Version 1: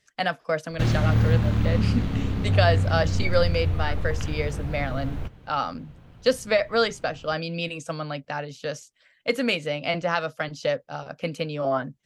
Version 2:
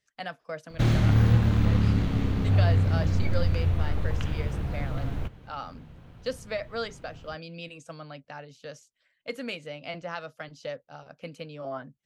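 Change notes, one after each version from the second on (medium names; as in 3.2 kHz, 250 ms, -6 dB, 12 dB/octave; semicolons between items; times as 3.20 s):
speech -11.0 dB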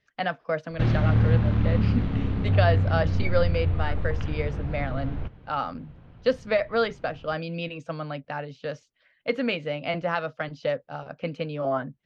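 speech +10.0 dB; master: add distance through air 230 m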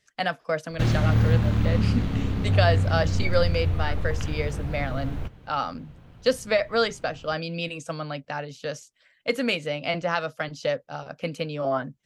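master: remove distance through air 230 m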